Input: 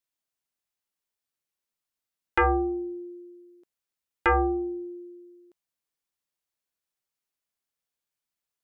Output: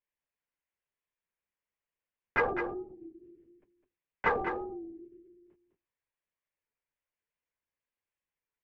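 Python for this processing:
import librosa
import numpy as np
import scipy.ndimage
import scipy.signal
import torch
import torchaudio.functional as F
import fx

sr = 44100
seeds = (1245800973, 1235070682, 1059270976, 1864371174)

p1 = fx.cabinet(x, sr, low_hz=200.0, low_slope=12, high_hz=2500.0, hz=(360.0, 740.0, 1300.0), db=(-9, -9, -9))
p2 = fx.hum_notches(p1, sr, base_hz=60, count=6)
p3 = fx.doubler(p2, sr, ms=24.0, db=-7.5)
p4 = fx.lpc_vocoder(p3, sr, seeds[0], excitation='whisper', order=16)
p5 = np.clip(p4, -10.0 ** (-31.0 / 20.0), 10.0 ** (-31.0 / 20.0))
p6 = p4 + (p5 * 10.0 ** (-7.5 / 20.0))
p7 = fx.air_absorb(p6, sr, metres=140.0)
p8 = p7 + fx.echo_single(p7, sr, ms=205, db=-8.0, dry=0)
y = fx.record_warp(p8, sr, rpm=33.33, depth_cents=100.0)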